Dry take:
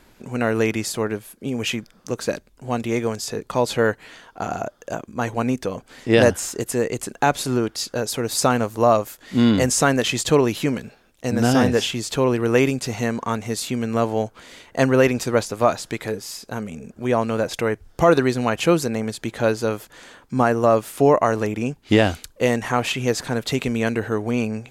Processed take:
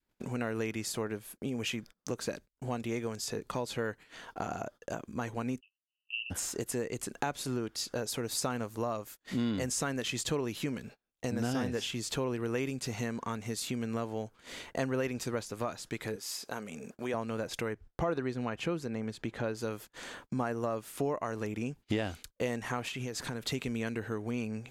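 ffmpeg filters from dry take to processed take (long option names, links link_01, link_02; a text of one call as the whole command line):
ffmpeg -i in.wav -filter_complex "[0:a]asplit=3[link_01][link_02][link_03];[link_01]afade=type=out:start_time=5.59:duration=0.02[link_04];[link_02]asuperpass=centerf=2800:order=8:qfactor=7.2,afade=type=in:start_time=5.59:duration=0.02,afade=type=out:start_time=6.3:duration=0.02[link_05];[link_03]afade=type=in:start_time=6.3:duration=0.02[link_06];[link_04][link_05][link_06]amix=inputs=3:normalize=0,asettb=1/sr,asplit=3[link_07][link_08][link_09];[link_07]atrim=end=16.164[link_10];[link_08]atrim=start=16.16:end=17.14,asetpts=PTS-STARTPTS,afade=type=in:duration=0.004:curve=qsin,afade=type=out:start_time=0.976:duration=0.004:curve=qsin,highpass=frequency=460:poles=1[link_11];[link_09]atrim=start=17.136[link_12];[link_10][link_11]acrossfade=duration=0.004:curve1=hsin:curve2=qsin[link_13];[link_13][link_12]acrossfade=duration=0.004:curve1=qsin:curve2=hsin,asettb=1/sr,asplit=3[link_14][link_15][link_16];[link_14]atrim=end=17.734[link_17];[link_15]atrim=start=17.73:end=19.55,asetpts=PTS-STARTPTS,afade=type=in:duration=0.004:curve=qsin,afade=type=out:start_time=1.816:duration=0.004:curve=qsin,lowpass=frequency=2600:poles=1[link_18];[link_16]atrim=start=19.546[link_19];[link_17][link_18]acrossfade=duration=0.004:curve1=hsin:curve2=qsin[link_20];[link_20][link_19]acrossfade=duration=0.004:curve1=qsin:curve2=hsin,asettb=1/sr,asplit=3[link_21][link_22][link_23];[link_21]atrim=end=22.884[link_24];[link_22]atrim=start=22.88:end=23.43,asetpts=PTS-STARTPTS,afade=type=in:duration=0.004:curve=qsin,afade=type=out:start_time=0.546:duration=0.004:curve=qsin,acompressor=threshold=-25dB:ratio=6:attack=3.2:release=140:knee=1:detection=peak[link_25];[link_23]atrim=start=23.426[link_26];[link_24][link_25]acrossfade=duration=0.004:curve1=hsin:curve2=qsin[link_27];[link_27][link_26]acrossfade=duration=0.004:curve1=qsin:curve2=hsin,acompressor=threshold=-37dB:ratio=2.5,adynamicequalizer=threshold=0.00355:dfrequency=680:dqfactor=1.4:tfrequency=680:tqfactor=1.4:attack=5:release=100:ratio=0.375:range=2.5:mode=cutabove:tftype=bell,agate=range=-32dB:threshold=-48dB:ratio=16:detection=peak" out.wav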